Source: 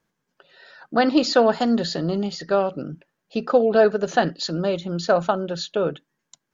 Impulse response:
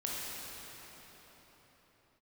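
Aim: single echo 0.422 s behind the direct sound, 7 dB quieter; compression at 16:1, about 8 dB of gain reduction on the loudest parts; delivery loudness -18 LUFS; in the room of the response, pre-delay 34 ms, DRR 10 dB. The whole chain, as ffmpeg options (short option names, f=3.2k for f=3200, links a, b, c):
-filter_complex "[0:a]acompressor=threshold=-19dB:ratio=16,aecho=1:1:422:0.447,asplit=2[a][b];[1:a]atrim=start_sample=2205,adelay=34[c];[b][c]afir=irnorm=-1:irlink=0,volume=-14.5dB[d];[a][d]amix=inputs=2:normalize=0,volume=7dB"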